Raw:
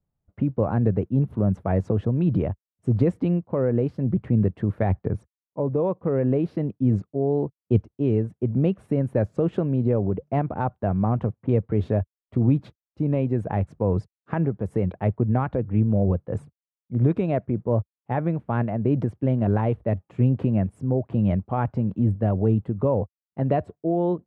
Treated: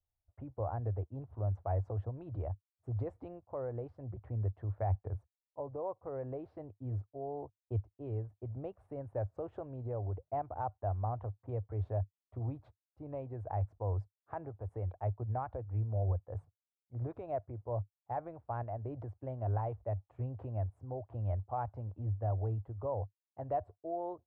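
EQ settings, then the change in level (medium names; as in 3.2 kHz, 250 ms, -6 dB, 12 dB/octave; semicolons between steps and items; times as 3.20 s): FFT filter 100 Hz 0 dB, 180 Hz -27 dB, 290 Hz -14 dB, 450 Hz -10 dB, 730 Hz +1 dB, 2.7 kHz -17 dB; -8.0 dB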